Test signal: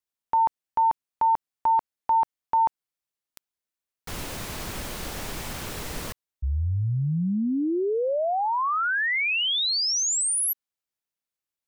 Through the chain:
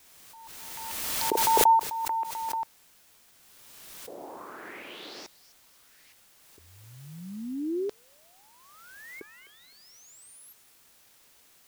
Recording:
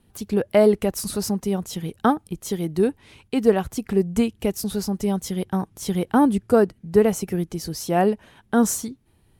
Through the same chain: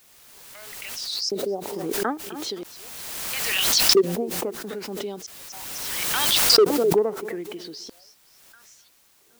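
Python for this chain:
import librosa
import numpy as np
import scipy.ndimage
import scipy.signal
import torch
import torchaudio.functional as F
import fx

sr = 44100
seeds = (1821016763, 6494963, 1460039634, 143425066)

p1 = fx.filter_lfo_lowpass(x, sr, shape='saw_up', hz=0.76, low_hz=430.0, high_hz=5700.0, q=4.4)
p2 = p1 + fx.echo_feedback(p1, sr, ms=257, feedback_pct=32, wet_db=-20.0, dry=0)
p3 = fx.filter_lfo_highpass(p2, sr, shape='square', hz=0.38, low_hz=340.0, high_hz=5300.0, q=2.2)
p4 = fx.quant_dither(p3, sr, seeds[0], bits=8, dither='triangular')
p5 = fx.pre_swell(p4, sr, db_per_s=24.0)
y = p5 * 10.0 ** (-11.5 / 20.0)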